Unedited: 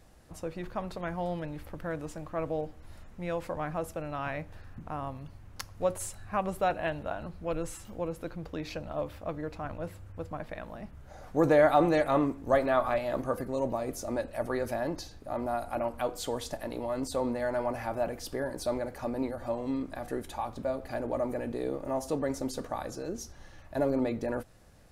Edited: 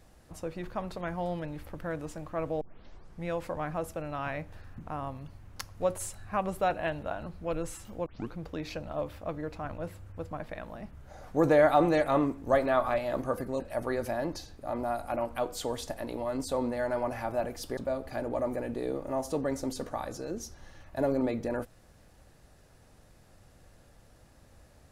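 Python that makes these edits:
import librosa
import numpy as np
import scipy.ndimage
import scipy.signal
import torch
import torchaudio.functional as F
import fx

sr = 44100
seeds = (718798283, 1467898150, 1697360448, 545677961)

y = fx.edit(x, sr, fx.tape_start(start_s=2.61, length_s=0.64),
    fx.tape_start(start_s=8.06, length_s=0.27),
    fx.cut(start_s=13.6, length_s=0.63),
    fx.cut(start_s=18.4, length_s=2.15), tone=tone)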